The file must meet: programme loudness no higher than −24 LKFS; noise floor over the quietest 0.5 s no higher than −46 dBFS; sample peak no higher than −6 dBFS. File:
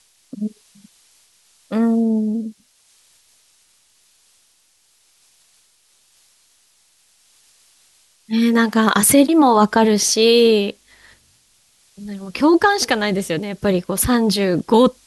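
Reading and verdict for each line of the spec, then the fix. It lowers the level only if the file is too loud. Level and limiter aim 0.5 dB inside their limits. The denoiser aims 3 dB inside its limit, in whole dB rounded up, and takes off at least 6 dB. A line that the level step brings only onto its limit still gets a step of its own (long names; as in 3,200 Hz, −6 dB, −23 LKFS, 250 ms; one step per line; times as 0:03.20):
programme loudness −16.5 LKFS: out of spec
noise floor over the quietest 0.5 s −59 dBFS: in spec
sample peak −2.5 dBFS: out of spec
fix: level −8 dB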